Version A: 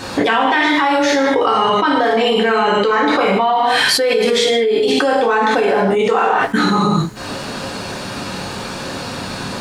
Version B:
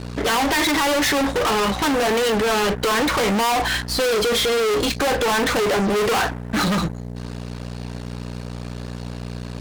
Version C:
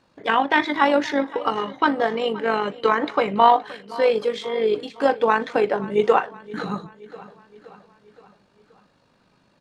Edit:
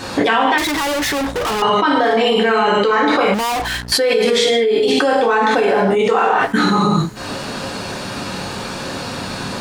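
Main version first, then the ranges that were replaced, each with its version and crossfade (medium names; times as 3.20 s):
A
0.58–1.62 s: from B
3.34–3.92 s: from B
not used: C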